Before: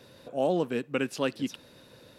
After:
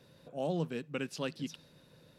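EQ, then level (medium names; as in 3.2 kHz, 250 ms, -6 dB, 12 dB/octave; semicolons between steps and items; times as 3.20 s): dynamic bell 4.9 kHz, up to +6 dB, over -54 dBFS, Q 0.96; bass shelf 70 Hz +7 dB; peaking EQ 160 Hz +13.5 dB 0.26 oct; -9.0 dB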